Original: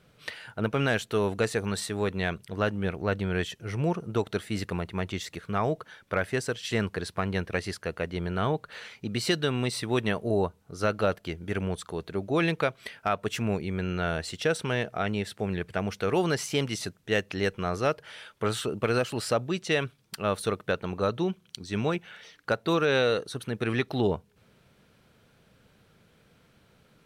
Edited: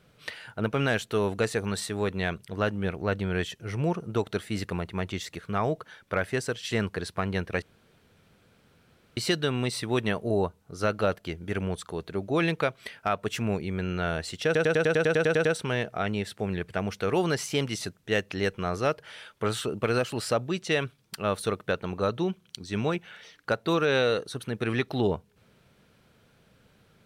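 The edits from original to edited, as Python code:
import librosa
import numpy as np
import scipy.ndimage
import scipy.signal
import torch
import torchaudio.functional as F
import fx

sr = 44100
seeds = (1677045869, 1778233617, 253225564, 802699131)

y = fx.edit(x, sr, fx.room_tone_fill(start_s=7.62, length_s=1.55),
    fx.stutter(start_s=14.45, slice_s=0.1, count=11), tone=tone)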